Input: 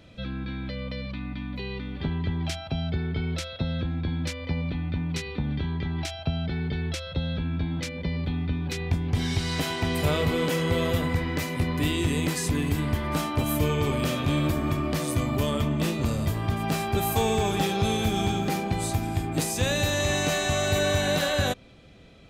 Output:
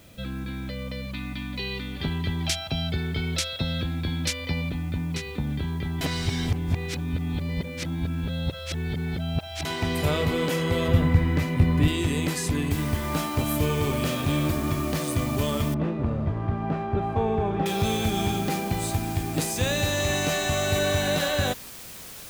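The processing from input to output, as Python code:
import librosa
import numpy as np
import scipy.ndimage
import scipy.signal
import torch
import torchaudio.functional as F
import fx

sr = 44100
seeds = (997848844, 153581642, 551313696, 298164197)

y = fx.high_shelf(x, sr, hz=2400.0, db=11.5, at=(1.14, 4.69))
y = fx.bass_treble(y, sr, bass_db=8, treble_db=-8, at=(10.88, 11.88))
y = fx.noise_floor_step(y, sr, seeds[0], at_s=12.71, before_db=-58, after_db=-42, tilt_db=0.0)
y = fx.lowpass(y, sr, hz=1300.0, slope=12, at=(15.74, 17.66))
y = fx.edit(y, sr, fx.reverse_span(start_s=6.01, length_s=3.64), tone=tone)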